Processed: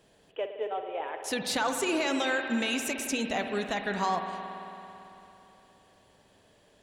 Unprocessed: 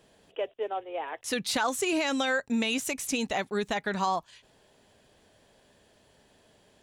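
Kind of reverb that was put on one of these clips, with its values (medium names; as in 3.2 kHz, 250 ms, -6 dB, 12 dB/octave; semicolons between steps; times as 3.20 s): spring tank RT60 3.3 s, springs 55 ms, chirp 40 ms, DRR 5 dB; trim -1.5 dB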